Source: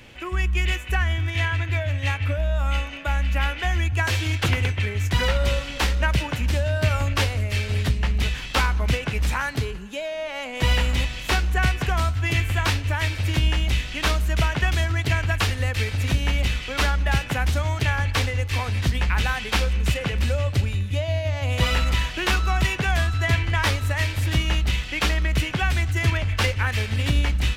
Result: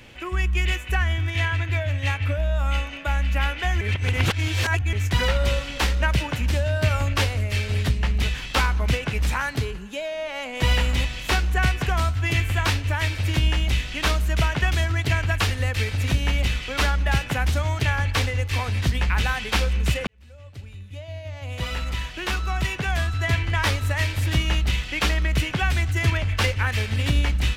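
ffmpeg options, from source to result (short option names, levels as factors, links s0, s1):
-filter_complex "[0:a]asplit=4[s0][s1][s2][s3];[s0]atrim=end=3.812[s4];[s1]atrim=start=3.808:end=4.932,asetpts=PTS-STARTPTS,areverse[s5];[s2]atrim=start=4.928:end=20.07,asetpts=PTS-STARTPTS,afade=t=out:st=15.138:d=0.004:c=hsin[s6];[s3]atrim=start=20.07,asetpts=PTS-STARTPTS,afade=t=in:d=3.8[s7];[s4][s5]acrossfade=d=0.004:c1=hsin:c2=hsin[s8];[s6][s7]concat=n=2:v=0:a=1[s9];[s8][s9]acrossfade=d=0.004:c1=hsin:c2=hsin"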